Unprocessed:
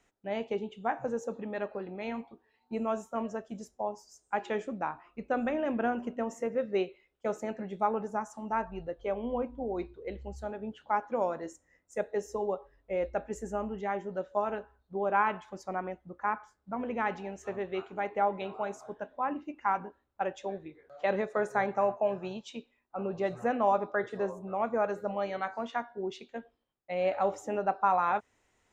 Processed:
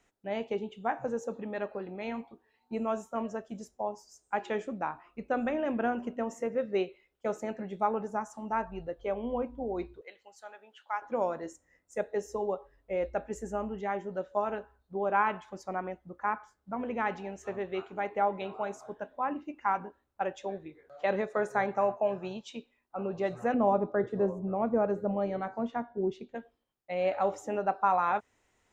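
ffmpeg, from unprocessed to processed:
-filter_complex "[0:a]asettb=1/sr,asplit=3[a][b][c];[a]atrim=end=10.014[d];[b]atrim=start=10.01:end=11.02,asetpts=PTS-STARTPTS,afade=t=in:d=0.004:c=qsin,afade=t=out:st=1.006:d=0.004:c=qsin,highpass=1.1k[e];[c]atrim=start=11.016[f];[d][e]acrossfade=d=0.004:c1=hsin:c2=qsin[g];[g][f]acrossfade=d=0.004:c1=qsin:c2=hsin,asettb=1/sr,asplit=3[h][i][j];[h]atrim=end=23.544[k];[i]atrim=start=23.54:end=26.35,asetpts=PTS-STARTPTS,afade=t=in:d=0.004:c=qsin,afade=t=out:st=2.806:d=0.004:c=qsin,tiltshelf=f=680:g=9.5[l];[j]atrim=start=26.346[m];[k][l]acrossfade=d=0.004:c1=hsin:c2=qsin[n];[n][m]acrossfade=d=0.004:c1=qsin:c2=hsin"

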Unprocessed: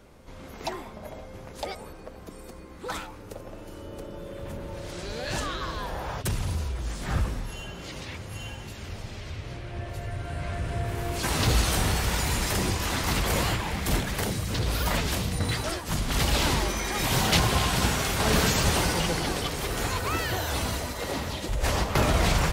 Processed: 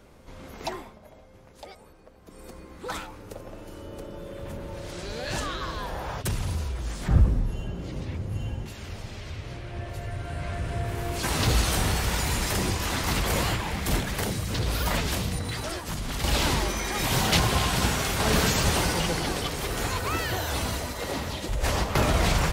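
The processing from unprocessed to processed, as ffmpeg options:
-filter_complex "[0:a]asettb=1/sr,asplit=3[a][b][c];[a]atrim=end=7.084[d];[b]atrim=start=7.08:end=8.66,asetpts=PTS-STARTPTS,afade=t=in:d=0.004:c=qsin,afade=t=out:st=1.576:d=0.004:c=qsin,tiltshelf=f=640:g=8.5[e];[c]atrim=start=8.656[f];[d][e]acrossfade=d=0.004:c1=hsin:c2=qsin[g];[g][f]acrossfade=d=0.004:c1=qsin:c2=hsin,asettb=1/sr,asplit=3[h][i][j];[h]atrim=end=15.384[k];[i]atrim=start=15.38:end=16.24,asetpts=PTS-STARTPTS,afade=t=in:d=0.004:c=qsin,afade=t=out:st=0.856:d=0.004:c=qsin,acompressor=threshold=-27dB:ratio=6:attack=3.2:release=140:knee=1:detection=peak[l];[j]atrim=start=16.236[m];[k][l]acrossfade=d=0.004:c1=hsin:c2=qsin[n];[n][m]acrossfade=d=0.004:c1=qsin:c2=hsin,asplit=3[o][p][q];[o]atrim=end=0.99,asetpts=PTS-STARTPTS,afade=t=out:st=0.75:d=0.24:silence=0.316228[r];[p]atrim=start=0.99:end=2.23,asetpts=PTS-STARTPTS,volume=-10dB[s];[q]atrim=start=2.23,asetpts=PTS-STARTPTS,afade=t=in:d=0.24:silence=0.316228[t];[r][s][t]concat=n=3:v=0:a=1"

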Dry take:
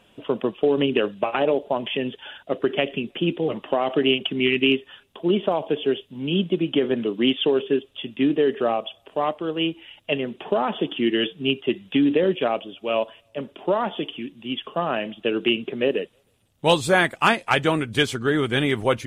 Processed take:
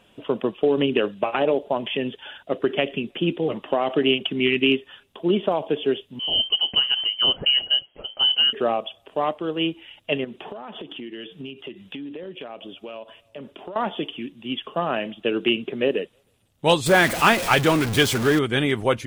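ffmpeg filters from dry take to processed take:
-filter_complex "[0:a]asettb=1/sr,asplit=3[a][b][c];[a]atrim=end=6.194[d];[b]atrim=start=6.19:end=8.53,asetpts=PTS-STARTPTS,afade=t=in:d=0.004:c=qsin,afade=t=out:st=2.336:d=0.004:c=qsin,lowpass=f=2.8k:t=q:w=0.5098,lowpass=f=2.8k:t=q:w=0.6013,lowpass=f=2.8k:t=q:w=0.9,lowpass=f=2.8k:t=q:w=2.563,afreqshift=-3300[e];[c]atrim=start=8.526[f];[d][e]acrossfade=d=0.004:c1=hsin:c2=qsin[g];[g][f]acrossfade=d=0.004:c1=qsin:c2=hsin,asettb=1/sr,asplit=3[h][i][j];[h]atrim=end=10.244[k];[i]atrim=start=10.24:end=13.76,asetpts=PTS-STARTPTS,afade=t=in:d=0.004:c=qsin,afade=t=out:st=3.516:d=0.004:c=qsin,acompressor=threshold=-32dB:ratio=10:attack=3.2:release=140:knee=1:detection=peak[l];[j]atrim=start=13.756[m];[k][l]acrossfade=d=0.004:c1=hsin:c2=qsin[n];[n][m]acrossfade=d=0.004:c1=qsin:c2=hsin,asettb=1/sr,asplit=3[o][p][q];[o]atrim=end=16.864[r];[p]atrim=start=16.86:end=18.39,asetpts=PTS-STARTPTS,afade=t=in:d=0.004:c=qsin,afade=t=out:st=1.526:d=0.004:c=qsin,aeval=exprs='val(0)+0.5*0.0794*sgn(val(0))':c=same[s];[q]atrim=start=18.386[t];[r][s]acrossfade=d=0.004:c1=hsin:c2=qsin[u];[u][t]acrossfade=d=0.004:c1=qsin:c2=hsin"

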